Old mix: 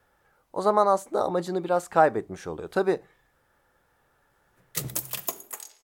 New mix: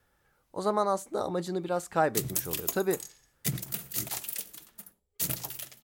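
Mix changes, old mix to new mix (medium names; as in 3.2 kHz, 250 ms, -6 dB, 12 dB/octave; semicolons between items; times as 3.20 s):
background: entry -2.60 s; master: add peaking EQ 810 Hz -7.5 dB 2.5 oct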